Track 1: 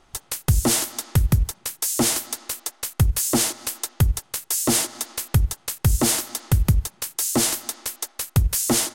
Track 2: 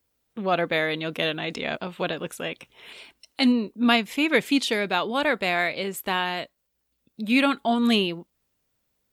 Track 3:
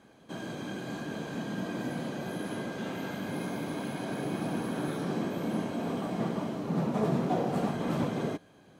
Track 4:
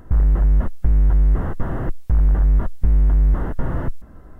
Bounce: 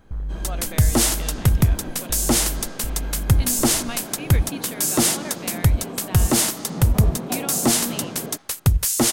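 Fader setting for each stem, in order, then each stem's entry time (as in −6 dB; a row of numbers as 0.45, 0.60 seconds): +1.5, −13.0, −1.0, −13.0 decibels; 0.30, 0.00, 0.00, 0.00 seconds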